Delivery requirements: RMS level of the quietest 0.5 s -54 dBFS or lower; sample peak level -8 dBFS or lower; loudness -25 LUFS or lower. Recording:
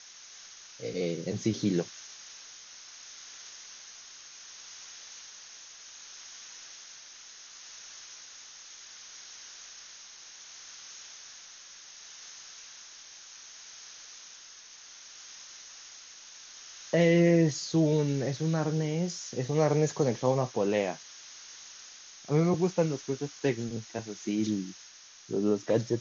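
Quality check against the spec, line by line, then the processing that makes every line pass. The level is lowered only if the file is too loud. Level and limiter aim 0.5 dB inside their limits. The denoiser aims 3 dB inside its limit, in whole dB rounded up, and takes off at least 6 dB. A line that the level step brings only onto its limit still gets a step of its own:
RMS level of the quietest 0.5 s -52 dBFS: fail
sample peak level -13.0 dBFS: OK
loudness -29.0 LUFS: OK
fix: denoiser 6 dB, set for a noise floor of -52 dBFS

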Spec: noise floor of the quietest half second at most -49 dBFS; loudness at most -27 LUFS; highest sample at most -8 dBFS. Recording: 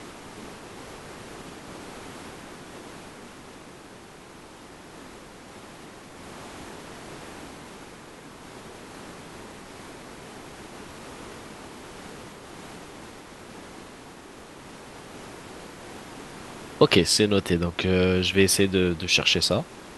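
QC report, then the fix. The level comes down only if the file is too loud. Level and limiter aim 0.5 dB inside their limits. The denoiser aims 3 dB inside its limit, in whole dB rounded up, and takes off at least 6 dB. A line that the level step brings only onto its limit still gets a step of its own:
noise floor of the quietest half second -46 dBFS: fail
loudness -21.5 LUFS: fail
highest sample -2.5 dBFS: fail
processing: gain -6 dB

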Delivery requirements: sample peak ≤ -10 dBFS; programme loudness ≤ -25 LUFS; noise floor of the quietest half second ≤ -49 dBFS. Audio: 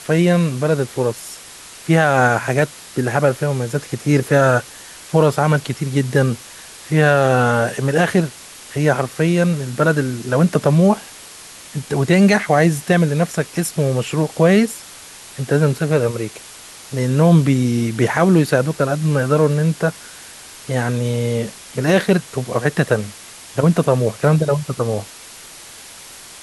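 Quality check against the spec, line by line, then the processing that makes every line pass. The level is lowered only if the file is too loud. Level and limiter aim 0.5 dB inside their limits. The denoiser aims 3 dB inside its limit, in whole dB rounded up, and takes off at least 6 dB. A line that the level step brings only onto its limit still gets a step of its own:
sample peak -2.5 dBFS: fail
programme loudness -17.5 LUFS: fail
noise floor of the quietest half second -39 dBFS: fail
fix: denoiser 6 dB, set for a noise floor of -39 dBFS; gain -8 dB

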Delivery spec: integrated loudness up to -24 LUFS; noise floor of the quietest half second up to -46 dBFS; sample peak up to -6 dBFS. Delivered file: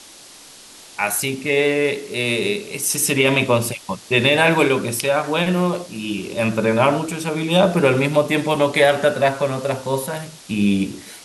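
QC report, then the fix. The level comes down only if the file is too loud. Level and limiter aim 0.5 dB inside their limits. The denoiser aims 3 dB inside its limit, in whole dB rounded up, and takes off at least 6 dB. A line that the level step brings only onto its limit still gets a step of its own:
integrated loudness -19.0 LUFS: fail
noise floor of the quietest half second -43 dBFS: fail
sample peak -3.5 dBFS: fail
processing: gain -5.5 dB

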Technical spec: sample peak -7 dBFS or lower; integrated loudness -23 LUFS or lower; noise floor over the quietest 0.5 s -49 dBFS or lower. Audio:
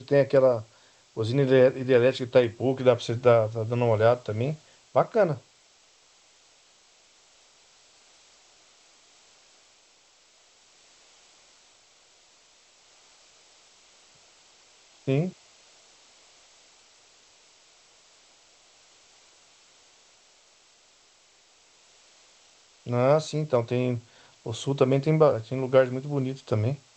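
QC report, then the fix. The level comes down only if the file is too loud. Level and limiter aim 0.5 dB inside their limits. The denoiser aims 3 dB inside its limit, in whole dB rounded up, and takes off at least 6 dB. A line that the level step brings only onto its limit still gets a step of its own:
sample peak -6.5 dBFS: fail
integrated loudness -24.5 LUFS: OK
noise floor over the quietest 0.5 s -60 dBFS: OK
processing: limiter -7.5 dBFS

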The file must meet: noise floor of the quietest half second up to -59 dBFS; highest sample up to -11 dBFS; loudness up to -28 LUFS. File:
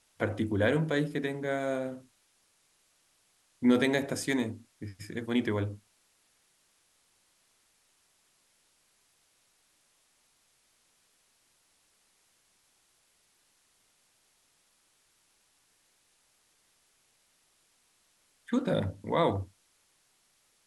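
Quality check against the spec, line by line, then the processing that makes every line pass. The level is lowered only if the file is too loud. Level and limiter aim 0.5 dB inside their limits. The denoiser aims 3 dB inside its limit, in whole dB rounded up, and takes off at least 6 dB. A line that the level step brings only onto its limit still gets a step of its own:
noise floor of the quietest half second -70 dBFS: OK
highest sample -12.5 dBFS: OK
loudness -30.5 LUFS: OK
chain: none

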